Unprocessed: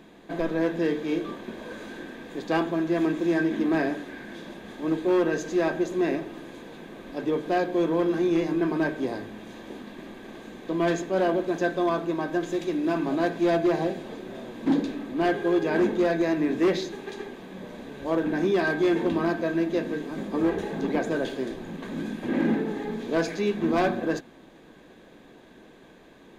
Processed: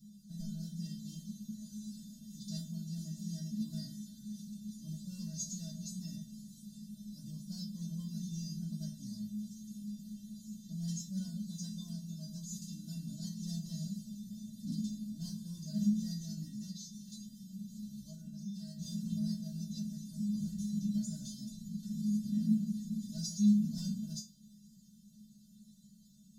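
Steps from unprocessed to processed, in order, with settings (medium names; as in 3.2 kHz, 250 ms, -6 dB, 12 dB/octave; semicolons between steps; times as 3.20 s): elliptic band-stop 160–5200 Hz, stop band 40 dB; 16.48–18.79 s: compression 6:1, threshold -45 dBFS, peak gain reduction 10.5 dB; feedback comb 210 Hz, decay 0.25 s, harmonics odd, mix 100%; trim +18 dB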